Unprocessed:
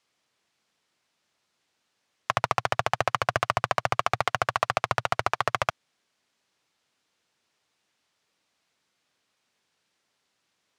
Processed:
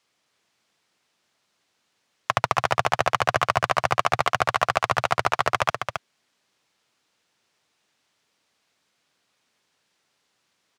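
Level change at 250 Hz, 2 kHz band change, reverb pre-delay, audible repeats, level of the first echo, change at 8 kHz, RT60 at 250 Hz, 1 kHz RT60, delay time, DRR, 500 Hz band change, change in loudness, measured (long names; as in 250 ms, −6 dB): +4.0 dB, +4.0 dB, no reverb audible, 1, −6.5 dB, +4.0 dB, no reverb audible, no reverb audible, 269 ms, no reverb audible, +4.0 dB, +3.5 dB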